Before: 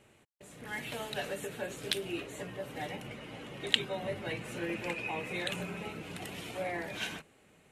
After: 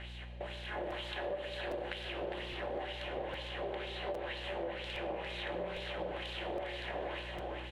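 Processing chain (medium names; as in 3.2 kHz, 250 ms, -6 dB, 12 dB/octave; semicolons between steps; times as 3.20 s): spectral levelling over time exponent 0.4; LFO band-pass sine 2.1 Hz 540–4500 Hz; delay 405 ms -6.5 dB; on a send at -4 dB: reverberation RT60 0.95 s, pre-delay 3 ms; on the sum: mains buzz 60 Hz, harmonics 4, -52 dBFS -8 dB/octave; tilt shelf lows +6 dB, about 1.2 kHz; compression, threshold -34 dBFS, peak gain reduction 9.5 dB; dynamic bell 4.9 kHz, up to -7 dB, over -59 dBFS, Q 1.5; crackling interface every 0.81 s, samples 256, repeat, from 0.90 s; loudspeaker Doppler distortion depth 0.19 ms; trim -1 dB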